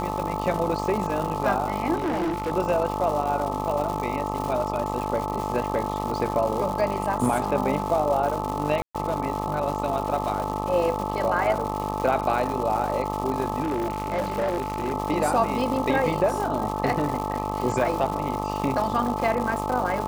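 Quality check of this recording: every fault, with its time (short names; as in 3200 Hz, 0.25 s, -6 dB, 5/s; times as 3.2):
buzz 50 Hz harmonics 26 -30 dBFS
crackle 310/s -29 dBFS
tone 870 Hz -30 dBFS
1.95–2.52 clipped -22.5 dBFS
8.82–8.95 gap 0.126 s
13.62–14.92 clipped -21 dBFS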